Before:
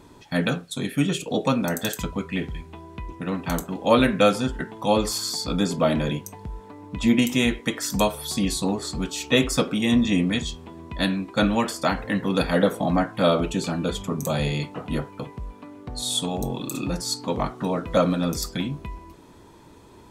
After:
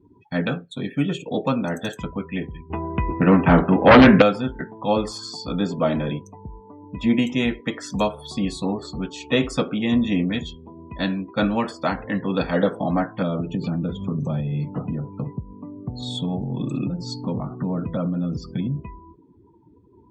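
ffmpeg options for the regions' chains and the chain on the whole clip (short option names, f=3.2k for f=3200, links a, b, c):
-filter_complex "[0:a]asettb=1/sr,asplit=3[a][b][c];[a]atrim=end=2.704[d];[b]atrim=start=2.7:end=4.22,asetpts=PTS-STARTPTS,afade=t=in:d=0.004:c=qsin,afade=t=out:st=1.516:d=0.004:c=qsin,lowpass=f=2.8k:w=0.5412,lowpass=f=2.8k:w=1.3066,aeval=exprs='0.562*sin(PI/2*3.16*val(0)/0.562)':c=same[e];[c]atrim=start=4.216[f];[d][e]acrossfade=d=0.004:c1=hsin:c2=qsin[g];[g][f]acrossfade=d=0.004:c1=qsin:c2=hsin,asettb=1/sr,asplit=3[h][i][j];[h]atrim=end=13.224[k];[i]atrim=start=13.22:end=18.81,asetpts=PTS-STARTPTS,afade=t=in:d=0.004:c=qsin,afade=t=out:st=5.586:d=0.004:c=qsin,bass=f=250:g=15,treble=f=4k:g=0,acompressor=threshold=-19dB:ratio=16:attack=3.2:release=140:knee=1:detection=peak,highpass=110,lowpass=7.1k[l];[j]atrim=start=18.806[m];[k][l]acrossfade=d=0.004:c1=hsin:c2=qsin[n];[n][m]acrossfade=d=0.004:c1=qsin:c2=hsin,lowpass=f=3k:p=1,afftdn=nr=29:nf=-41,highpass=63"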